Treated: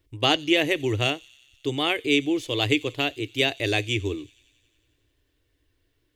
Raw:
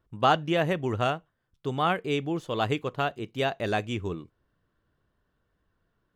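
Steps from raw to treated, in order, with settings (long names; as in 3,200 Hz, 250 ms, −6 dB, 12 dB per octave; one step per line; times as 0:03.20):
drawn EQ curve 120 Hz 0 dB, 200 Hz −28 dB, 280 Hz +4 dB, 690 Hz −8 dB, 1,400 Hz −12 dB, 2,100 Hz +6 dB
on a send: delay with a high-pass on its return 91 ms, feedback 73%, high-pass 4,600 Hz, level −16.5 dB
on the sum: level +5 dB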